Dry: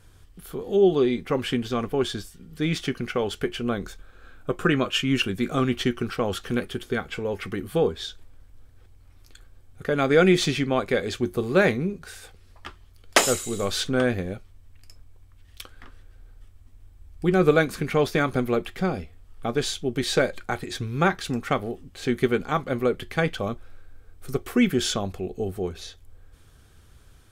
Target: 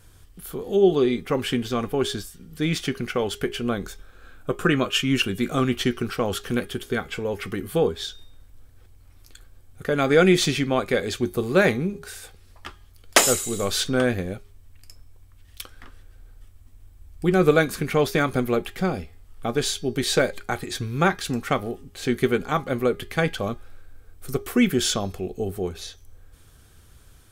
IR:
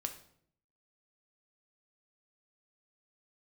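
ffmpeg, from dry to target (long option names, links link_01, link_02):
-af "highshelf=frequency=7600:gain=7.5,bandreject=frequency=409.1:width_type=h:width=4,bandreject=frequency=818.2:width_type=h:width=4,bandreject=frequency=1227.3:width_type=h:width=4,bandreject=frequency=1636.4:width_type=h:width=4,bandreject=frequency=2045.5:width_type=h:width=4,bandreject=frequency=2454.6:width_type=h:width=4,bandreject=frequency=2863.7:width_type=h:width=4,bandreject=frequency=3272.8:width_type=h:width=4,bandreject=frequency=3681.9:width_type=h:width=4,bandreject=frequency=4091:width_type=h:width=4,bandreject=frequency=4500.1:width_type=h:width=4,bandreject=frequency=4909.2:width_type=h:width=4,bandreject=frequency=5318.3:width_type=h:width=4,bandreject=frequency=5727.4:width_type=h:width=4,bandreject=frequency=6136.5:width_type=h:width=4,volume=1dB"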